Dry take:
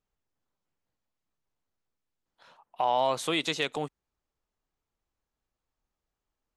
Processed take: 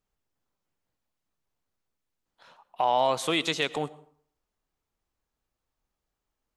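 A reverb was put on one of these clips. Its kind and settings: plate-style reverb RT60 0.54 s, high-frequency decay 0.65×, pre-delay 85 ms, DRR 18 dB; gain +2 dB

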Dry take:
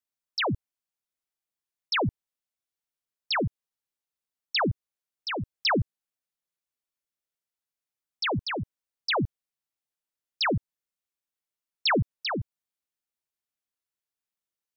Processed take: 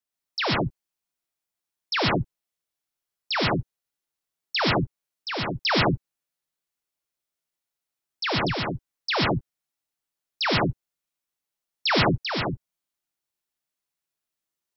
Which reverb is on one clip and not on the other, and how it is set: non-linear reverb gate 0.16 s rising, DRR -2 dB

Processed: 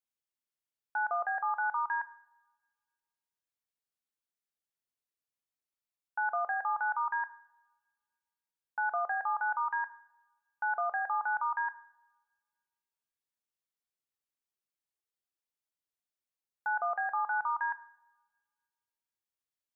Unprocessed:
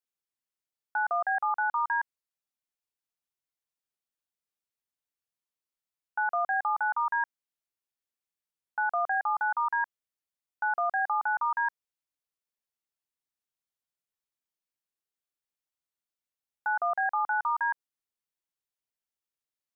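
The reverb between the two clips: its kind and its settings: two-slope reverb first 0.66 s, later 1.8 s, from -22 dB, DRR 12.5 dB; gain -4 dB

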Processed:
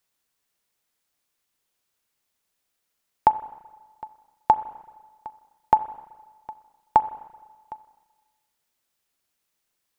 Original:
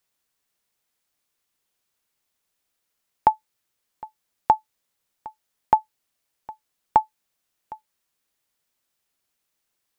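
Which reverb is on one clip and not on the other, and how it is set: spring tank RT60 1.3 s, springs 31/38/42 ms, chirp 75 ms, DRR 14 dB

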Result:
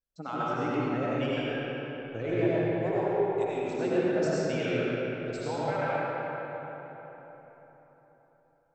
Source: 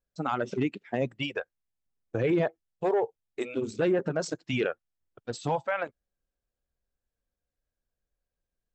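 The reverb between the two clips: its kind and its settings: digital reverb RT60 4.2 s, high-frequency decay 0.55×, pre-delay 50 ms, DRR -9 dB; gain -8.5 dB

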